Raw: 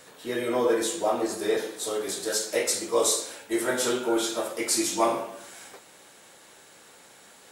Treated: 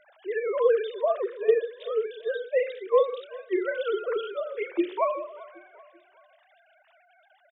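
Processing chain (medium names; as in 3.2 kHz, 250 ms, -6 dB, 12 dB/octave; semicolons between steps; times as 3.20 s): formants replaced by sine waves; hum notches 60/120/180/240/300/360 Hz; feedback delay 387 ms, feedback 47%, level -21 dB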